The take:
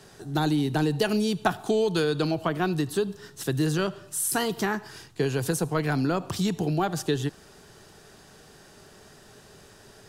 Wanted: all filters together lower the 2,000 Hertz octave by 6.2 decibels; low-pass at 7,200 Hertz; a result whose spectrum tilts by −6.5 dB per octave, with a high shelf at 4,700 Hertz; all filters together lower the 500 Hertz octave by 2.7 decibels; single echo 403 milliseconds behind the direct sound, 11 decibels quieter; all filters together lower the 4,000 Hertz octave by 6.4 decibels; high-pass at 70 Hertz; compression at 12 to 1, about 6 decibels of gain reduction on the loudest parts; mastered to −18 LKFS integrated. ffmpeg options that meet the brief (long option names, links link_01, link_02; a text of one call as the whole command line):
ffmpeg -i in.wav -af "highpass=70,lowpass=7200,equalizer=frequency=500:width_type=o:gain=-3,equalizer=frequency=2000:width_type=o:gain=-7.5,equalizer=frequency=4000:width_type=o:gain=-3,highshelf=frequency=4700:gain=-4.5,acompressor=threshold=-27dB:ratio=12,aecho=1:1:403:0.282,volume=15dB" out.wav